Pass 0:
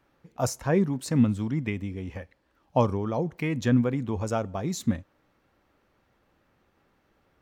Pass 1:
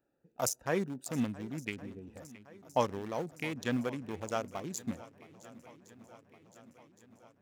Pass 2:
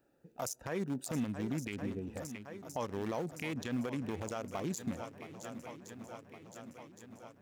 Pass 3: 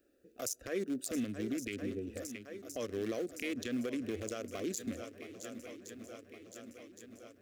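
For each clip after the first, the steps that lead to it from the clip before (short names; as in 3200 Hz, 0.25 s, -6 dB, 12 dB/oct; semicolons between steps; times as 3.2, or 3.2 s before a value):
Wiener smoothing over 41 samples; RIAA curve recording; swung echo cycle 1.115 s, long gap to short 1.5:1, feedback 59%, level -19.5 dB; gain -3.5 dB
compressor 6:1, threshold -36 dBFS, peak gain reduction 13 dB; limiter -33 dBFS, peak gain reduction 10.5 dB; gain +7 dB
fixed phaser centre 370 Hz, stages 4; gain +3 dB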